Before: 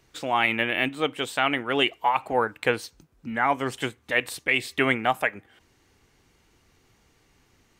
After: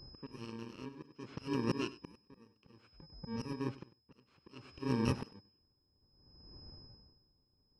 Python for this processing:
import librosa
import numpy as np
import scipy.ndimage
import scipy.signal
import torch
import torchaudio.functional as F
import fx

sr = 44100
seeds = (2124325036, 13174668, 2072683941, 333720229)

y = fx.bit_reversed(x, sr, seeds[0], block=64)
y = fx.env_lowpass(y, sr, base_hz=1200.0, full_db=-22.5)
y = fx.high_shelf(y, sr, hz=2100.0, db=-6.0)
y = fx.auto_swell(y, sr, attack_ms=480.0)
y = y + 10.0 ** (-49.0 / 20.0) * np.sin(2.0 * np.pi * 5100.0 * np.arange(len(y)) / sr)
y = fx.spacing_loss(y, sr, db_at_10k=33)
y = y + 10.0 ** (-14.5 / 20.0) * np.pad(y, (int(98 * sr / 1000.0), 0))[:len(y)]
y = y * 10.0 ** (-23 * (0.5 - 0.5 * np.cos(2.0 * np.pi * 0.6 * np.arange(len(y)) / sr)) / 20.0)
y = y * librosa.db_to_amplitude(11.0)